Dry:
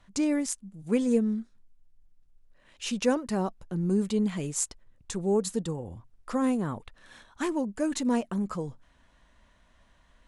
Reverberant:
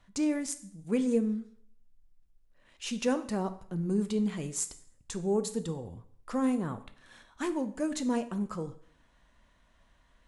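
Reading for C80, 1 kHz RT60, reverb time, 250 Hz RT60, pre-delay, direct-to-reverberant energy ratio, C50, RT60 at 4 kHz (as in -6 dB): 17.5 dB, 0.55 s, 0.55 s, 0.60 s, 6 ms, 10.5 dB, 14.0 dB, 0.55 s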